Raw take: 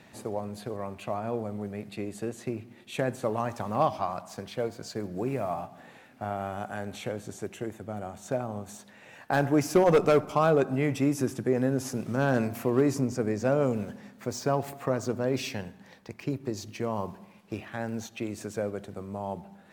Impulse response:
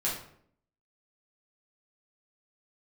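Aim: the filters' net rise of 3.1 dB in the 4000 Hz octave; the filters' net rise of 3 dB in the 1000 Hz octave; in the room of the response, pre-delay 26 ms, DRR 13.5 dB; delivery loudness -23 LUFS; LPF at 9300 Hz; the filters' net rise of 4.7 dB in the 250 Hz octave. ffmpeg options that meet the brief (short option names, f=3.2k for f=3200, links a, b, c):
-filter_complex "[0:a]lowpass=9.3k,equalizer=f=250:t=o:g=5.5,equalizer=f=1k:t=o:g=3.5,equalizer=f=4k:t=o:g=4,asplit=2[a][b];[1:a]atrim=start_sample=2205,adelay=26[c];[b][c]afir=irnorm=-1:irlink=0,volume=-20dB[d];[a][d]amix=inputs=2:normalize=0,volume=4dB"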